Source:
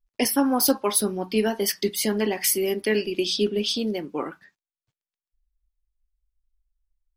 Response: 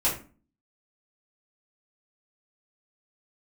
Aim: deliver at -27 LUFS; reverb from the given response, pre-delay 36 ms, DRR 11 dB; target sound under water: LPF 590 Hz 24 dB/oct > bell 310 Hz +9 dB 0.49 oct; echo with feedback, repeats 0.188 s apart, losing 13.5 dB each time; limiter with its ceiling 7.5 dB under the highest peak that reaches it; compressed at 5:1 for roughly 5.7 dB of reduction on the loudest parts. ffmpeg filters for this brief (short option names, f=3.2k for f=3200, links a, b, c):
-filter_complex "[0:a]acompressor=threshold=-22dB:ratio=5,alimiter=limit=-18.5dB:level=0:latency=1,aecho=1:1:188|376:0.211|0.0444,asplit=2[a][b];[1:a]atrim=start_sample=2205,adelay=36[c];[b][c]afir=irnorm=-1:irlink=0,volume=-22dB[d];[a][d]amix=inputs=2:normalize=0,lowpass=f=590:w=0.5412,lowpass=f=590:w=1.3066,equalizer=f=310:t=o:w=0.49:g=9"